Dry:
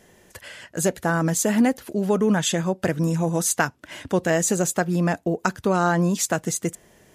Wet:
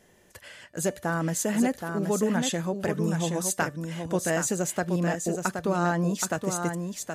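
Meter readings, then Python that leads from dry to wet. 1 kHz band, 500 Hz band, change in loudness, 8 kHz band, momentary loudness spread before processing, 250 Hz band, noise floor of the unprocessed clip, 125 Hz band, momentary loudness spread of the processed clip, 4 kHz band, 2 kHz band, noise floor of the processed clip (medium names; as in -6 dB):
-5.0 dB, -4.5 dB, -5.0 dB, -5.0 dB, 7 LU, -5.0 dB, -57 dBFS, -5.0 dB, 5 LU, -5.0 dB, -5.0 dB, -58 dBFS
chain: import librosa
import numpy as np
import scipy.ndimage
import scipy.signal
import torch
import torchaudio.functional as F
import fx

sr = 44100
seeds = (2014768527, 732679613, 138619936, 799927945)

p1 = fx.comb_fb(x, sr, f0_hz=590.0, decay_s=0.43, harmonics='all', damping=0.0, mix_pct=50)
y = p1 + fx.echo_single(p1, sr, ms=773, db=-6.0, dry=0)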